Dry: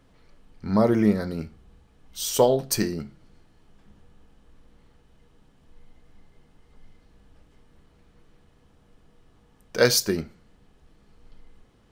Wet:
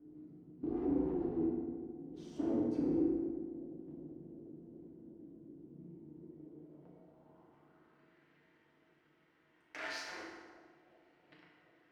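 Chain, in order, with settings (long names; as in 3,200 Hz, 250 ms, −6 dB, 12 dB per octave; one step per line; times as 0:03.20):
low-pass filter 7,700 Hz
parametric band 180 Hz +12.5 dB 1.3 octaves
hum removal 55.42 Hz, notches 39
leveller curve on the samples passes 3
downward compressor 6 to 1, threshold −30 dBFS, peak gain reduction 24.5 dB
hard clipping −34.5 dBFS, distortion −7 dB
ring modulation 160 Hz
band-pass filter sweep 260 Hz → 1,900 Hz, 0:06.01–0:08.15
bucket-brigade delay 369 ms, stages 2,048, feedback 77%, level −17 dB
feedback delay network reverb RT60 1.5 s, low-frequency decay 1.1×, high-frequency decay 0.7×, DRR −4.5 dB
level +5 dB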